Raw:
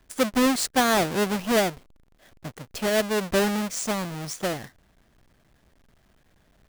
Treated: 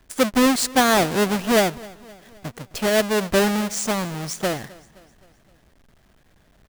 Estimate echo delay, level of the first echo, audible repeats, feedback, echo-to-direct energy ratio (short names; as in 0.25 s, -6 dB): 0.26 s, -22.0 dB, 3, 52%, -20.5 dB